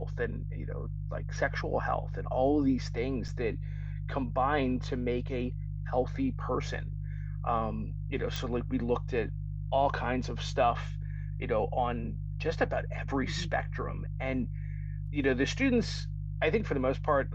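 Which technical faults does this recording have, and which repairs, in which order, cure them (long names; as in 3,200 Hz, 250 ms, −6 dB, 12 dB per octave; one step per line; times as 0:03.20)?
mains hum 50 Hz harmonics 3 −36 dBFS
0:03.28–0:03.29: drop-out 5.6 ms
0:08.36: click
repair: click removal
hum removal 50 Hz, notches 3
repair the gap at 0:03.28, 5.6 ms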